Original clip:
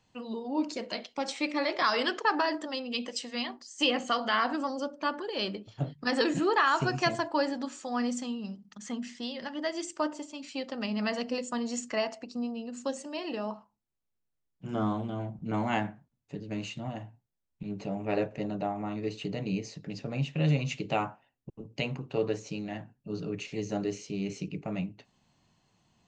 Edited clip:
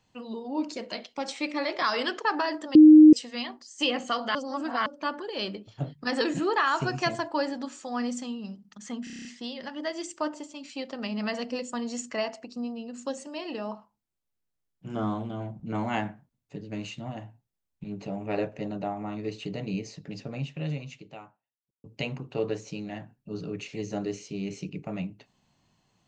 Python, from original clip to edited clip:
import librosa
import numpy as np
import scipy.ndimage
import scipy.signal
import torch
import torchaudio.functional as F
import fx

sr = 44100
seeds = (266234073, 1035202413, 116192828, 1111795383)

y = fx.edit(x, sr, fx.bleep(start_s=2.75, length_s=0.38, hz=308.0, db=-8.0),
    fx.reverse_span(start_s=4.35, length_s=0.51),
    fx.stutter(start_s=9.04, slice_s=0.03, count=8),
    fx.fade_out_span(start_s=19.99, length_s=1.64, curve='qua'), tone=tone)